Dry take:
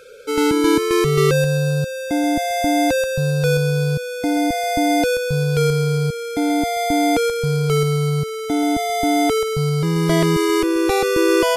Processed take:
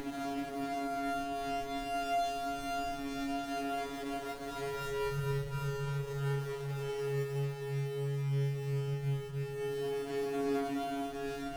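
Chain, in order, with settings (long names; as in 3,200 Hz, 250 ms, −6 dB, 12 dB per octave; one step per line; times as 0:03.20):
phases set to zero 139 Hz
downward compressor, threshold −21 dBFS, peak gain reduction 9 dB
extreme stretch with random phases 4.8×, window 0.50 s, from 0:06.31
octave-band graphic EQ 125/250/500/1,000/4,000/8,000 Hz −8/−12/−3/−11/−8/−7 dB
windowed peak hold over 17 samples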